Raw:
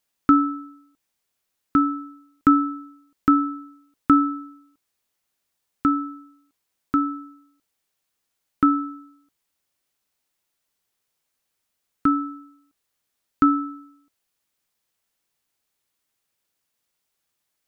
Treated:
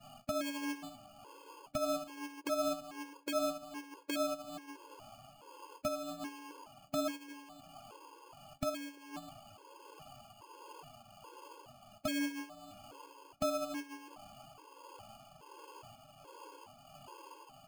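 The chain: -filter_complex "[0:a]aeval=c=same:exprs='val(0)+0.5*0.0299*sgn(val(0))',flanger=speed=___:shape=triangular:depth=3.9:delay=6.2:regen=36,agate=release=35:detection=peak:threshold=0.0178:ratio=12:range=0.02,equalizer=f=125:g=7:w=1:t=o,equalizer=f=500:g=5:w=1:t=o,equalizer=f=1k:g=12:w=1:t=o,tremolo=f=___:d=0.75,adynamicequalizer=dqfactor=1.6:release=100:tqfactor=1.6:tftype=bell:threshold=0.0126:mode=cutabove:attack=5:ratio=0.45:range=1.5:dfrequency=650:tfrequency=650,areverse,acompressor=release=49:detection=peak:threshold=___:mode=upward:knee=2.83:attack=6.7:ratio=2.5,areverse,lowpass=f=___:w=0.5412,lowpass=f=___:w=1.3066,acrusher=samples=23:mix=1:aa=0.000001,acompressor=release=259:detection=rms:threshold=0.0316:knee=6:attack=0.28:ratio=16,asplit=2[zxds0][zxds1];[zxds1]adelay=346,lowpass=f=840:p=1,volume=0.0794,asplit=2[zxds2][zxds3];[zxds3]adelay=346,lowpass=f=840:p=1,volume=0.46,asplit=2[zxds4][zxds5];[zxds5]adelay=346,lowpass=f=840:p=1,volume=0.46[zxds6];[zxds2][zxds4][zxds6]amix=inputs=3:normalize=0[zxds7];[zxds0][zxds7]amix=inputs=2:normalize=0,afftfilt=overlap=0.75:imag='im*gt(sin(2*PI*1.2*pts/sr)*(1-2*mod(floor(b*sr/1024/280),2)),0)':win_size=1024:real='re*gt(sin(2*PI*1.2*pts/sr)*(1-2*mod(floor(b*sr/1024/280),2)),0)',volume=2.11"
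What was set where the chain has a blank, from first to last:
1.3, 1.4, 0.0178, 1.3k, 1.3k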